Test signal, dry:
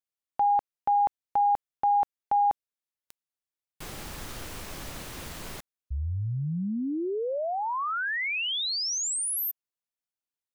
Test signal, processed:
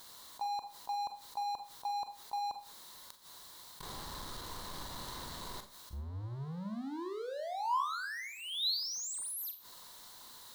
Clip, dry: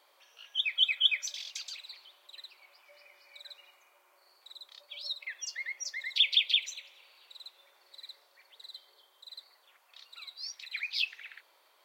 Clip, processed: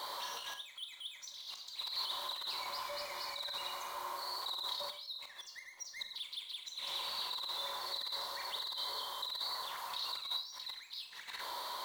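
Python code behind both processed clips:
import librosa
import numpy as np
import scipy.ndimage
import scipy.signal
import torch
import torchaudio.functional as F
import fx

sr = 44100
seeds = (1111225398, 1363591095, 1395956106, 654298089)

y = fx.gate_flip(x, sr, shuts_db=-30.0, range_db=-39)
y = fx.over_compress(y, sr, threshold_db=-56.0, ratio=-0.5)
y = fx.power_curve(y, sr, exponent=0.5)
y = fx.graphic_eq_31(y, sr, hz=(1000, 2500, 4000), db=(12, -11, 11))
y = fx.rev_schroeder(y, sr, rt60_s=0.4, comb_ms=30, drr_db=7.0)
y = F.gain(torch.from_numpy(y), 2.5).numpy()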